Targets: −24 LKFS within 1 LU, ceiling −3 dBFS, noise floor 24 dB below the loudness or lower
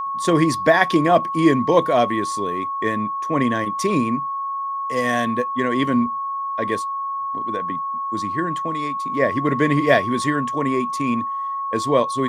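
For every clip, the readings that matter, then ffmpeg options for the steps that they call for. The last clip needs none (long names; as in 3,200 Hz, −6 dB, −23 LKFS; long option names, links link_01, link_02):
interfering tone 1,100 Hz; level of the tone −23 dBFS; integrated loudness −20.5 LKFS; sample peak −1.5 dBFS; target loudness −24.0 LKFS
→ -af "bandreject=frequency=1100:width=30"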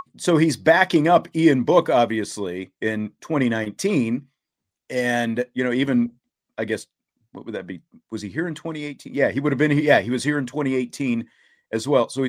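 interfering tone none found; integrated loudness −21.5 LKFS; sample peak −2.0 dBFS; target loudness −24.0 LKFS
→ -af "volume=-2.5dB"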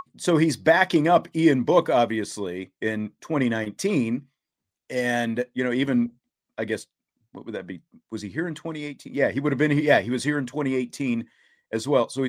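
integrated loudness −24.0 LKFS; sample peak −4.5 dBFS; background noise floor −89 dBFS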